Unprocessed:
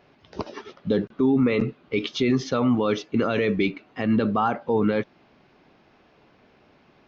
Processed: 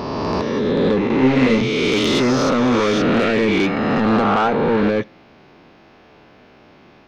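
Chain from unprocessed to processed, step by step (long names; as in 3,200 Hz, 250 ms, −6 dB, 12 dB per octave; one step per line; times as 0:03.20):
peak hold with a rise ahead of every peak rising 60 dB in 2.46 s
soft clipping −17.5 dBFS, distortion −11 dB
0:01.18–0:01.61: double-tracking delay 31 ms −3.5 dB
on a send: convolution reverb RT60 0.45 s, pre-delay 3 ms, DRR 22 dB
on the sum: level +6 dB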